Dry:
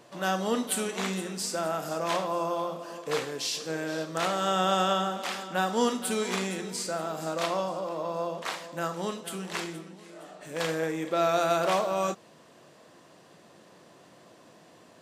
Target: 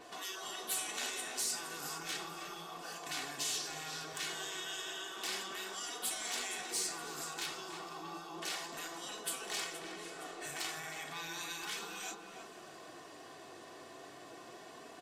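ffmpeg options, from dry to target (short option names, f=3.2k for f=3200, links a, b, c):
-filter_complex "[0:a]acompressor=threshold=-41dB:ratio=2,equalizer=f=130:w=0.3:g=-5.5,afftfilt=real='re*lt(hypot(re,im),0.0224)':imag='im*lt(hypot(re,im),0.0224)':win_size=1024:overlap=0.75,aecho=1:1:2.7:0.54,aeval=exprs='0.0237*(abs(mod(val(0)/0.0237+3,4)-2)-1)':c=same,asplit=2[a][b];[b]adelay=316,lowpass=f=1.7k:p=1,volume=-4.5dB,asplit=2[c][d];[d]adelay=316,lowpass=f=1.7k:p=1,volume=0.5,asplit=2[e][f];[f]adelay=316,lowpass=f=1.7k:p=1,volume=0.5,asplit=2[g][h];[h]adelay=316,lowpass=f=1.7k:p=1,volume=0.5,asplit=2[i][j];[j]adelay=316,lowpass=f=1.7k:p=1,volume=0.5,asplit=2[k][l];[l]adelay=316,lowpass=f=1.7k:p=1,volume=0.5[m];[a][c][e][g][i][k][m]amix=inputs=7:normalize=0,flanger=delay=4:depth=4.1:regen=-53:speed=0.33:shape=sinusoidal,acontrast=40,adynamicequalizer=threshold=0.002:dfrequency=4000:dqfactor=0.7:tfrequency=4000:tqfactor=0.7:attack=5:release=100:ratio=0.375:range=2:mode=boostabove:tftype=highshelf,volume=1dB"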